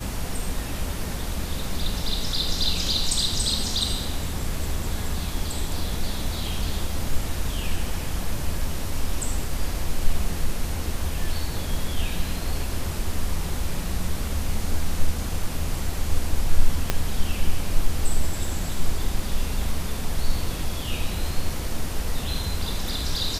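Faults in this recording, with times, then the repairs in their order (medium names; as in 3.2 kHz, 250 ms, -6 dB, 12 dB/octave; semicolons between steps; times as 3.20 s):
16.90 s: pop -5 dBFS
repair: de-click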